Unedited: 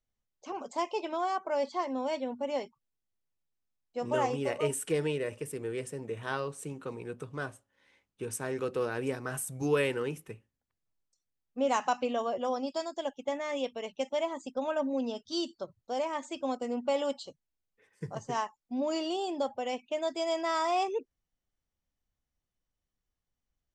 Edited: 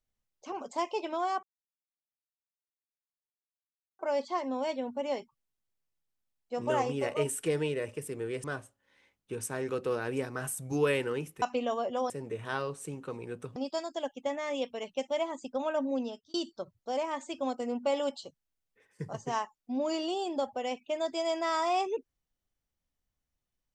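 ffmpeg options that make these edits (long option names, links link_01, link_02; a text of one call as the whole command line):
ffmpeg -i in.wav -filter_complex "[0:a]asplit=7[link_01][link_02][link_03][link_04][link_05][link_06][link_07];[link_01]atrim=end=1.43,asetpts=PTS-STARTPTS,afade=type=out:start_time=1.426:duration=0.004:curve=hsin,apad=pad_dur=2.56[link_08];[link_02]atrim=start=1.43:end=5.882,asetpts=PTS-STARTPTS,afade=type=in:duration=0.004:curve=hsin[link_09];[link_03]atrim=start=7.338:end=10.322[link_10];[link_04]atrim=start=11.898:end=12.582[link_11];[link_05]atrim=start=5.878:end=7.342[link_12];[link_06]atrim=start=12.578:end=15.36,asetpts=PTS-STARTPTS,afade=type=out:start_time=2.432:duration=0.35[link_13];[link_07]atrim=start=15.36,asetpts=PTS-STARTPTS,afade=type=in:duration=0.004:curve=hsin[link_14];[link_08][link_09]concat=n=2:v=0:a=1[link_15];[link_15][link_10]acrossfade=duration=0.004:curve1=hsin:curve2=hsin[link_16];[link_16][link_11]acrossfade=duration=0.004:curve1=hsin:curve2=hsin[link_17];[link_17][link_12]acrossfade=duration=0.004:curve1=hsin:curve2=hsin[link_18];[link_13][link_14]concat=n=2:v=0:a=1[link_19];[link_18][link_19]acrossfade=duration=0.004:curve1=hsin:curve2=hsin" out.wav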